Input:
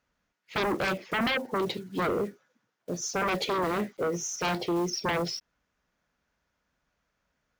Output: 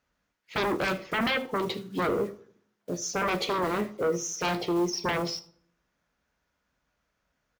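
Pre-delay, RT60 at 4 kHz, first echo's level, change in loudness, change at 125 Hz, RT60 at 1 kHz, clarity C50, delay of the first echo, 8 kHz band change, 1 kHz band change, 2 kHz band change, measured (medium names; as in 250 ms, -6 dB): 15 ms, 0.40 s, -21.0 dB, +0.5 dB, 0.0 dB, 0.55 s, 17.5 dB, 81 ms, +0.5 dB, +0.5 dB, +0.5 dB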